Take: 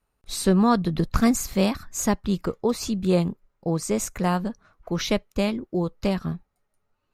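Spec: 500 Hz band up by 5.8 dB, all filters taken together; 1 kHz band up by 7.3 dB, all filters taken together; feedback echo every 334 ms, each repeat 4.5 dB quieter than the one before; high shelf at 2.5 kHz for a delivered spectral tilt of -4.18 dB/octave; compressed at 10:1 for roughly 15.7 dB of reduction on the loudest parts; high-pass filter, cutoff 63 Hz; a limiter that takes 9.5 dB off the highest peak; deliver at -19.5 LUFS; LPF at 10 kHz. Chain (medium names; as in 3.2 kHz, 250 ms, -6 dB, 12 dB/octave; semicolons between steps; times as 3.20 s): high-pass 63 Hz; low-pass 10 kHz; peaking EQ 500 Hz +5.5 dB; peaking EQ 1 kHz +7 dB; treble shelf 2.5 kHz +3 dB; compression 10:1, threshold -27 dBFS; peak limiter -23 dBFS; feedback delay 334 ms, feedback 60%, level -4.5 dB; trim +14 dB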